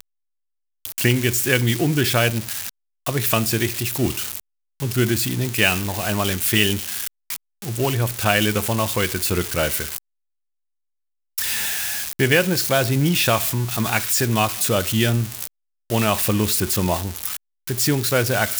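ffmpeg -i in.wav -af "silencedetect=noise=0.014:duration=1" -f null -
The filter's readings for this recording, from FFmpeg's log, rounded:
silence_start: 9.98
silence_end: 11.38 | silence_duration: 1.40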